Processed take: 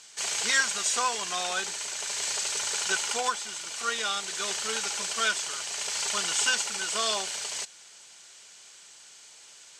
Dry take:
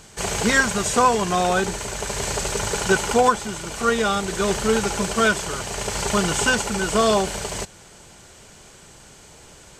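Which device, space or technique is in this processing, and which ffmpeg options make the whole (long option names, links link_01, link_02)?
piezo pickup straight into a mixer: -af "lowpass=5200,aderivative,volume=6dB"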